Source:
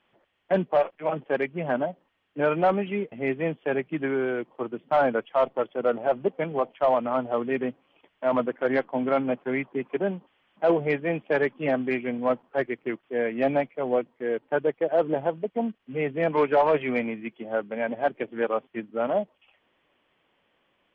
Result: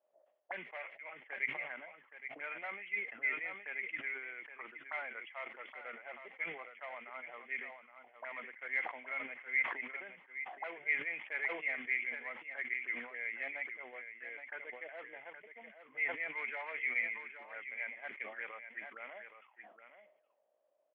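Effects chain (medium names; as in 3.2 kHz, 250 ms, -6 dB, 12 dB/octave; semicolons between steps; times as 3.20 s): high-pass 230 Hz 6 dB/octave; auto-wah 600–2100 Hz, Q 14, up, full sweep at -29 dBFS; on a send: delay 819 ms -10 dB; on the sum: decay stretcher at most 85 dB/s; trim +5 dB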